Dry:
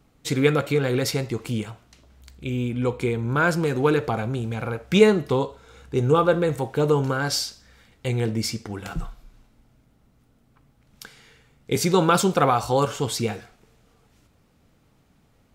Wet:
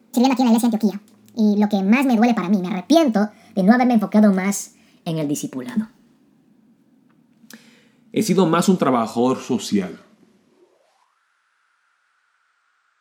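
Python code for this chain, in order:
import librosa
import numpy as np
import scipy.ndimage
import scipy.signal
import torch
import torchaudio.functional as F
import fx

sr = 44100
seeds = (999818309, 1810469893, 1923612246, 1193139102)

y = fx.speed_glide(x, sr, from_pct=184, to_pct=55)
y = fx.filter_sweep_highpass(y, sr, from_hz=220.0, to_hz=1400.0, start_s=10.43, end_s=11.19, q=6.5)
y = y * librosa.db_to_amplitude(-1.0)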